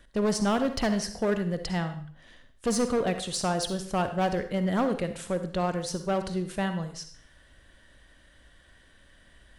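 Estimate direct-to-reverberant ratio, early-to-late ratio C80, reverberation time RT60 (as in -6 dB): 8.5 dB, 13.0 dB, 0.55 s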